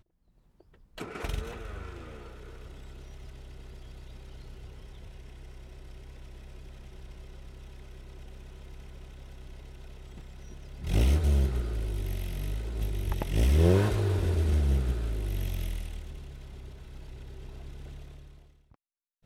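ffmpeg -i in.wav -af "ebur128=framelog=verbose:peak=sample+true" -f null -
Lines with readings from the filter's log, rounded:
Integrated loudness:
  I:         -29.7 LUFS
  Threshold: -44.1 LUFS
Loudness range:
  LRA:        21.0 LU
  Threshold: -53.5 LUFS
  LRA low:   -49.0 LUFS
  LRA high:  -28.0 LUFS
Sample peak:
  Peak:       -9.6 dBFS
True peak:
  Peak:       -9.5 dBFS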